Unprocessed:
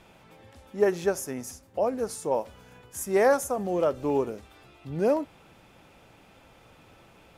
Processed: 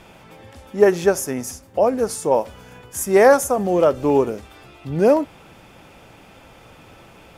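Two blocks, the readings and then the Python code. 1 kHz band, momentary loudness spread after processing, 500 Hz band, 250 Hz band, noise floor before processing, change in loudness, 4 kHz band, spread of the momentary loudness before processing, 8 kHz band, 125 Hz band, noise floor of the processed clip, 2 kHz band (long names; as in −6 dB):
+9.0 dB, 17 LU, +9.0 dB, +9.0 dB, −56 dBFS, +9.0 dB, +9.0 dB, 17 LU, +9.0 dB, +9.0 dB, −47 dBFS, +9.0 dB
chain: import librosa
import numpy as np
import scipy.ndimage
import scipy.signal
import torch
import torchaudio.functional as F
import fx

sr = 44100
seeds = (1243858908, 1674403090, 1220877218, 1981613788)

y = fx.notch(x, sr, hz=4000.0, q=25.0)
y = y * 10.0 ** (9.0 / 20.0)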